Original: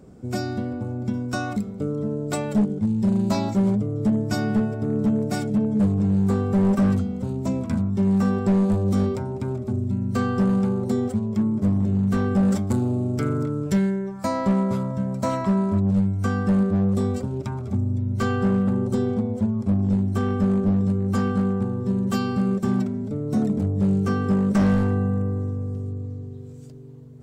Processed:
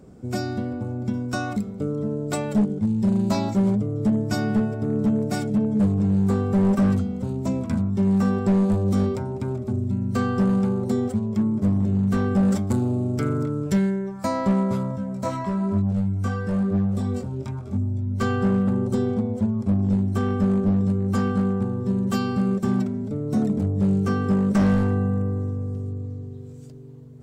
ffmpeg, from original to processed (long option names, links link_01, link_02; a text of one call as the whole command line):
ffmpeg -i in.wav -filter_complex "[0:a]asettb=1/sr,asplit=3[link_01][link_02][link_03];[link_01]atrim=end=14.964[link_04];[link_02]atrim=start=14.96:end=18.21,asetpts=PTS-STARTPTS,afade=type=in:duration=0.004:curve=qsin,afade=type=out:start_time=3.246:duration=0.004:curve=qsin,flanger=delay=19:depth=3.5:speed=1[link_05];[link_03]atrim=start=18.206[link_06];[link_04][link_05]acrossfade=duration=0.004:curve1=hsin:curve2=qsin[link_07];[link_07][link_06]acrossfade=duration=0.004:curve1=qsin:curve2=hsin" out.wav